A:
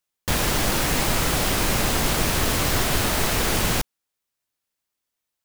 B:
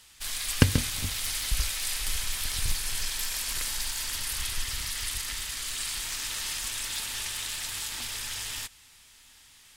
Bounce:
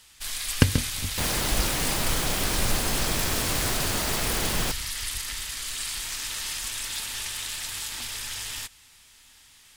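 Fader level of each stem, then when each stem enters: −6.0, +1.0 decibels; 0.90, 0.00 seconds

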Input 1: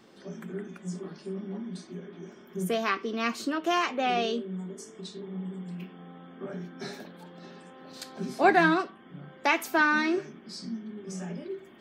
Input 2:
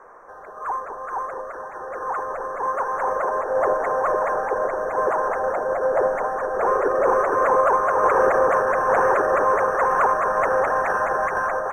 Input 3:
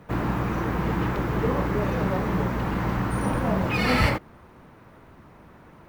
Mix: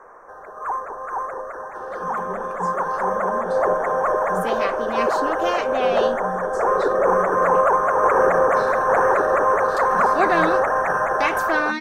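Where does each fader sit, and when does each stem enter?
+0.5 dB, +1.0 dB, muted; 1.75 s, 0.00 s, muted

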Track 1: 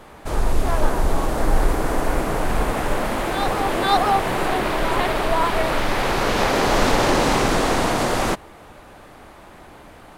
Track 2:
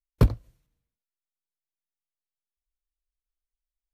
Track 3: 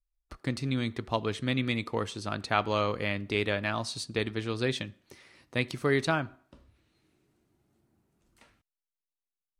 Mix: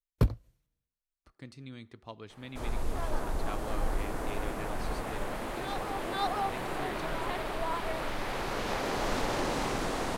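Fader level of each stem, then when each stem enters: −13.5, −6.0, −15.5 decibels; 2.30, 0.00, 0.95 seconds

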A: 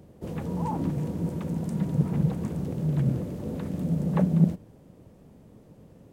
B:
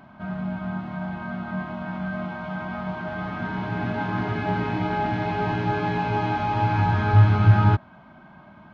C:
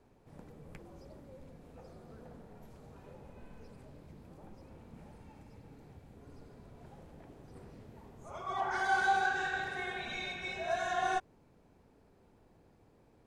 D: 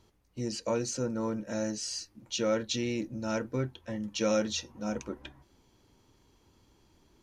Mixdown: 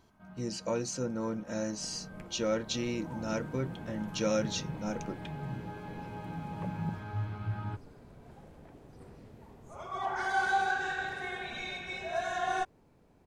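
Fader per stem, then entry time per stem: −15.5, −20.0, +0.5, −2.0 decibels; 2.45, 0.00, 1.45, 0.00 seconds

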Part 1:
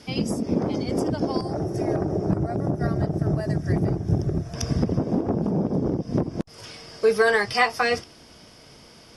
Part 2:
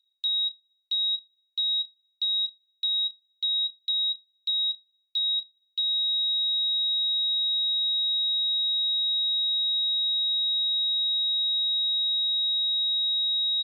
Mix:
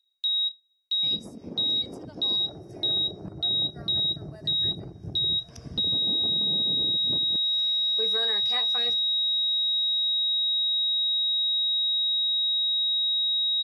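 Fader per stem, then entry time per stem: −16.0, +0.5 decibels; 0.95, 0.00 seconds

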